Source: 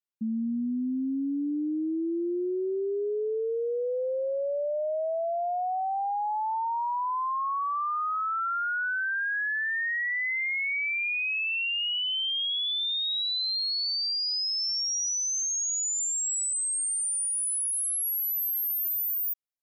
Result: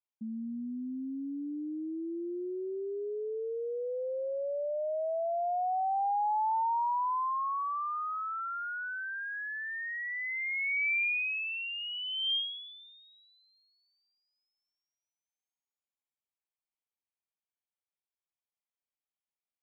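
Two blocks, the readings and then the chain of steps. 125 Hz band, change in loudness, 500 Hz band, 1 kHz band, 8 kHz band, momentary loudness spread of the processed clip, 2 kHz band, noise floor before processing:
can't be measured, −5.5 dB, −5.0 dB, −2.0 dB, below −40 dB, 9 LU, −5.5 dB, −29 dBFS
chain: Chebyshev low-pass with heavy ripple 3,300 Hz, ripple 9 dB

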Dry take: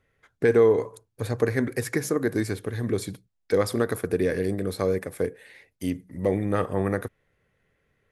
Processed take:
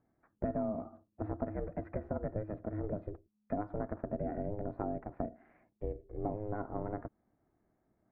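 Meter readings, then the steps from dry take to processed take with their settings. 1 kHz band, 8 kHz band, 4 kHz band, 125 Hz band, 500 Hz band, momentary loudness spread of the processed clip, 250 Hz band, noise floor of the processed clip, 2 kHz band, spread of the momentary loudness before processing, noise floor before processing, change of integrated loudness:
−7.0 dB, below −40 dB, below −40 dB, −11.5 dB, −15.5 dB, 6 LU, −11.5 dB, −79 dBFS, −23.0 dB, 11 LU, −75 dBFS, −13.5 dB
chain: downward compressor 5 to 1, threshold −29 dBFS, peak gain reduction 13.5 dB
low-pass filter 1,200 Hz 24 dB per octave
ring modulation 210 Hz
level −1.5 dB

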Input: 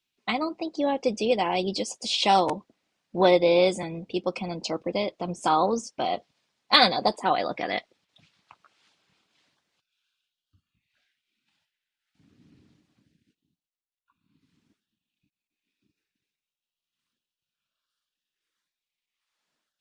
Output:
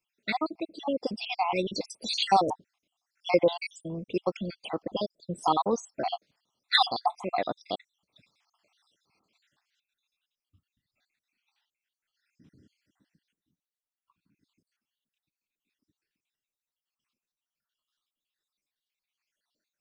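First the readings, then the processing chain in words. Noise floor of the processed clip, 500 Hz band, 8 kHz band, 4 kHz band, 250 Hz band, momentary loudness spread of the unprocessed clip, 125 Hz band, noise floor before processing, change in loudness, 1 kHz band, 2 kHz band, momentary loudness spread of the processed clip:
below −85 dBFS, −6.0 dB, −6.0 dB, −4.5 dB, −5.0 dB, 12 LU, −4.0 dB, below −85 dBFS, −4.5 dB, −3.5 dB, −4.5 dB, 12 LU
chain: time-frequency cells dropped at random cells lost 64%

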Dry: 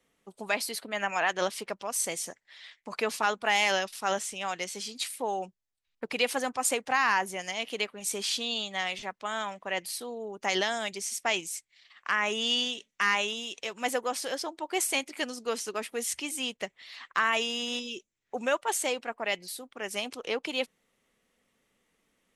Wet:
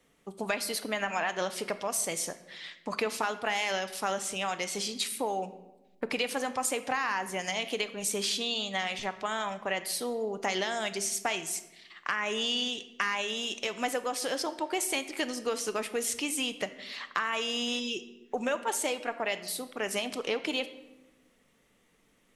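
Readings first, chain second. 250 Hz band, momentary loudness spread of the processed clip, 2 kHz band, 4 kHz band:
+2.0 dB, 6 LU, −3.0 dB, −1.0 dB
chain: low-shelf EQ 420 Hz +3 dB
downward compressor 4 to 1, threshold −33 dBFS, peak gain reduction 11 dB
rectangular room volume 490 cubic metres, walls mixed, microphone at 0.4 metres
level +4.5 dB

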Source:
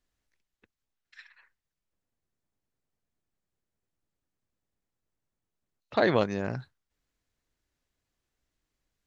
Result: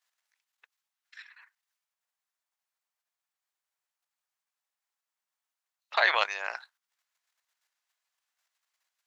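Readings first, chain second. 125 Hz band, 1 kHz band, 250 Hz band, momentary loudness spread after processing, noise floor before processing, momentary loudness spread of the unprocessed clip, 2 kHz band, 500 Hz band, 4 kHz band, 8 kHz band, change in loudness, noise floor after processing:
below −40 dB, +3.0 dB, below −25 dB, 14 LU, below −85 dBFS, 12 LU, +7.5 dB, −8.5 dB, +7.5 dB, can't be measured, +1.0 dB, below −85 dBFS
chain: output level in coarse steps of 9 dB
high-pass filter 810 Hz 24 dB per octave
dynamic equaliser 2,500 Hz, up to +7 dB, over −53 dBFS, Q 1.3
level +8.5 dB

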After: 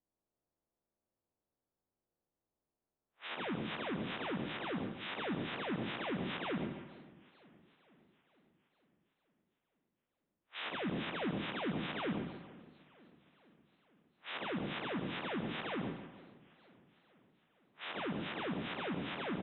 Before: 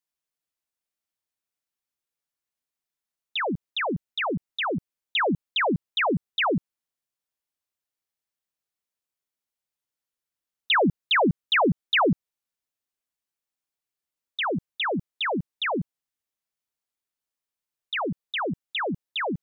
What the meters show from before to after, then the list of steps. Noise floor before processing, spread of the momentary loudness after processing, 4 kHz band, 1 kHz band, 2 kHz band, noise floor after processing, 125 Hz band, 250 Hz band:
below −85 dBFS, 11 LU, −15.0 dB, −15.0 dB, −14.5 dB, below −85 dBFS, −10.5 dB, −10.0 dB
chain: spectrum smeared in time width 194 ms
bass and treble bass −3 dB, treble +15 dB
on a send: feedback echo with a high-pass in the loop 70 ms, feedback 58%, high-pass 420 Hz, level −14 dB
on the sum: downward compressor 4 to 1, threshold −48 dBFS, peak gain reduction 15 dB
brickwall limiter −39.5 dBFS, peak gain reduction 10 dB
repeating echo 145 ms, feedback 45%, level −11 dB
low-pass that shuts in the quiet parts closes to 540 Hz, open at −46.5 dBFS
high-frequency loss of the air 500 metres
feedback echo with a swinging delay time 460 ms, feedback 61%, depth 162 cents, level −22.5 dB
level +14.5 dB

